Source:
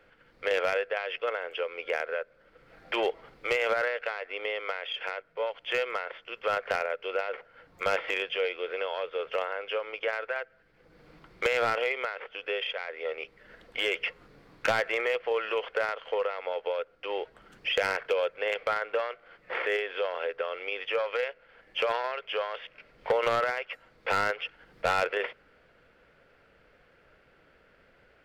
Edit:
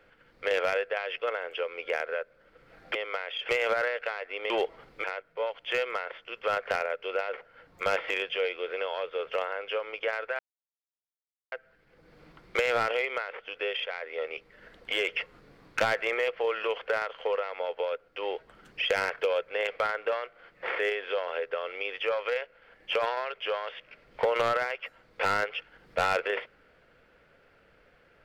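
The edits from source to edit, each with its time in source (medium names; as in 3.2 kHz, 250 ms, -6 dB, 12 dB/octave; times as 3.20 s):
2.95–3.49 s: swap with 4.50–5.04 s
10.39 s: insert silence 1.13 s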